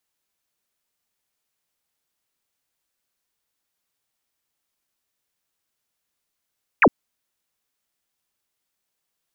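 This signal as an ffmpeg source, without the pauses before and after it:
-f lavfi -i "aevalsrc='0.335*clip(t/0.002,0,1)*clip((0.06-t)/0.002,0,1)*sin(2*PI*2800*0.06/log(180/2800)*(exp(log(180/2800)*t/0.06)-1))':d=0.06:s=44100"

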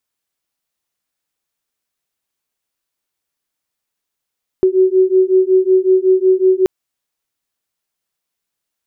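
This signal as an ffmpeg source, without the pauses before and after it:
-f lavfi -i "aevalsrc='0.251*(sin(2*PI*372*t)+sin(2*PI*377.4*t))':d=2.03:s=44100"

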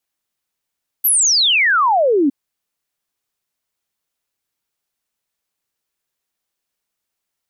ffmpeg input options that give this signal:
-f lavfi -i "aevalsrc='0.282*clip(min(t,1.26-t)/0.01,0,1)*sin(2*PI*13000*1.26/log(260/13000)*(exp(log(260/13000)*t/1.26)-1))':d=1.26:s=44100"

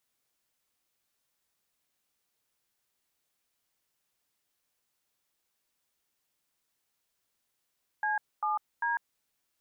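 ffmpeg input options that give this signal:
-f lavfi -i "aevalsrc='0.0335*clip(min(mod(t,0.396),0.149-mod(t,0.396))/0.002,0,1)*(eq(floor(t/0.396),0)*(sin(2*PI*852*mod(t,0.396))+sin(2*PI*1633*mod(t,0.396)))+eq(floor(t/0.396),1)*(sin(2*PI*852*mod(t,0.396))+sin(2*PI*1209*mod(t,0.396)))+eq(floor(t/0.396),2)*(sin(2*PI*941*mod(t,0.396))+sin(2*PI*1633*mod(t,0.396))))':d=1.188:s=44100"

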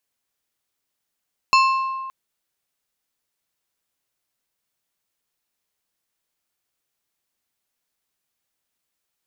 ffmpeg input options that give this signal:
-f lavfi -i "aevalsrc='0.266*pow(10,-3*t/1.79)*sin(2*PI*1060*t)+0.158*pow(10,-3*t/0.943)*sin(2*PI*2650*t)+0.0944*pow(10,-3*t/0.678)*sin(2*PI*4240*t)+0.0562*pow(10,-3*t/0.58)*sin(2*PI*5300*t)+0.0335*pow(10,-3*t/0.483)*sin(2*PI*6890*t)':d=0.57:s=44100"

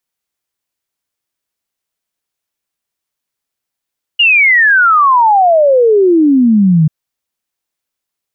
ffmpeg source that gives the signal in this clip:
-f lavfi -i "aevalsrc='0.562*clip(min(t,2.69-t)/0.01,0,1)*sin(2*PI*2900*2.69/log(150/2900)*(exp(log(150/2900)*t/2.69)-1))':d=2.69:s=44100"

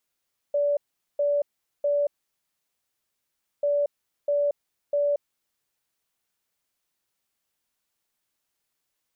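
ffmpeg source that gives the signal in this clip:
-f lavfi -i "aevalsrc='0.1*sin(2*PI*578*t)*clip(min(mod(mod(t,3.09),0.65),0.23-mod(mod(t,3.09),0.65))/0.005,0,1)*lt(mod(t,3.09),1.95)':d=6.18:s=44100"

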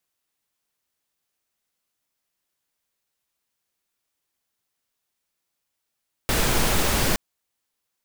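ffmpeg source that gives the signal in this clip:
-f lavfi -i "anoisesrc=c=pink:a=0.457:d=0.87:r=44100:seed=1"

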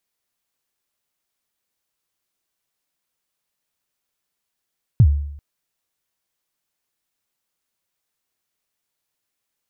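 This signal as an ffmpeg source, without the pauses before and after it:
-f lavfi -i "aevalsrc='0.531*pow(10,-3*t/0.75)*sin(2*PI*(140*0.065/log(72/140)*(exp(log(72/140)*min(t,0.065)/0.065)-1)+72*max(t-0.065,0)))':d=0.39:s=44100"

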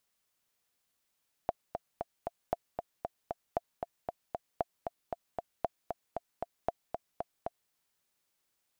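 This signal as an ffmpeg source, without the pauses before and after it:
-f lavfi -i "aevalsrc='pow(10,(-16-5.5*gte(mod(t,4*60/231),60/231))/20)*sin(2*PI*689*mod(t,60/231))*exp(-6.91*mod(t,60/231)/0.03)':d=6.23:s=44100"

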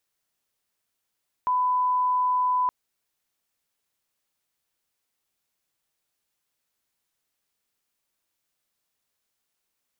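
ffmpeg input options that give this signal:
-f lavfi -i "sine=f=1000:d=1.22:r=44100,volume=-1.94dB"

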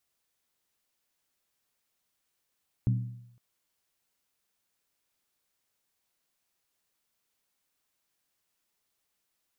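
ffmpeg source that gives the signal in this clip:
-f lavfi -i "aevalsrc='0.0944*pow(10,-3*t/0.78)*sin(2*PI*120*t)+0.0376*pow(10,-3*t/0.618)*sin(2*PI*191.3*t)+0.015*pow(10,-3*t/0.534)*sin(2*PI*256.3*t)+0.00596*pow(10,-3*t/0.515)*sin(2*PI*275.5*t)+0.00237*pow(10,-3*t/0.479)*sin(2*PI*318.4*t)':d=0.51:s=44100"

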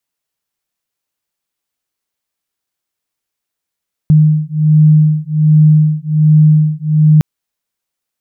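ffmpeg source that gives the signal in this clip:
-f lavfi -i "aevalsrc='0.355*(sin(2*PI*153*t)+sin(2*PI*154.3*t))':d=3.11:s=44100"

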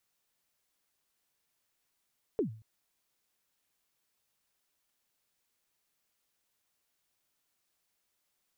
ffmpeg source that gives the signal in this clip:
-f lavfi -i "aevalsrc='0.0668*pow(10,-3*t/0.44)*sin(2*PI*(480*0.108/log(110/480)*(exp(log(110/480)*min(t,0.108)/0.108)-1)+110*max(t-0.108,0)))':d=0.23:s=44100"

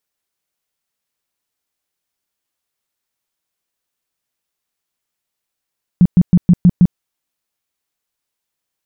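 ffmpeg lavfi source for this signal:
-f lavfi -i "aevalsrc='0.631*sin(2*PI*177*mod(t,0.16))*lt(mod(t,0.16),8/177)':d=0.96:s=44100"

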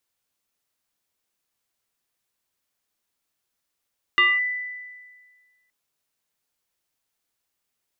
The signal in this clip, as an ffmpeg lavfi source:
-f lavfi -i "aevalsrc='0.237*pow(10,-3*t/1.63)*sin(2*PI*1990*t+0.98*clip(1-t/0.22,0,1)*sin(2*PI*0.41*1990*t))':d=1.52:s=44100"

